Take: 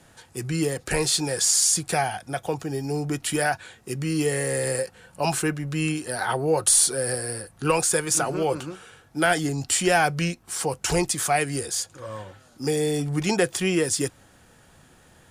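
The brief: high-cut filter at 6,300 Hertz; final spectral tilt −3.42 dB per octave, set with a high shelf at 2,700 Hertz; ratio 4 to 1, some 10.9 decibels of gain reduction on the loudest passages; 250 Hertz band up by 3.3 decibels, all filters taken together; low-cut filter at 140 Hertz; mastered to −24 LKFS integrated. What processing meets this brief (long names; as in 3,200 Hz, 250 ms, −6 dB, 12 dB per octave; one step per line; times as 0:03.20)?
high-pass filter 140 Hz
low-pass filter 6,300 Hz
parametric band 250 Hz +5.5 dB
high-shelf EQ 2,700 Hz +5.5 dB
downward compressor 4 to 1, threshold −28 dBFS
level +6.5 dB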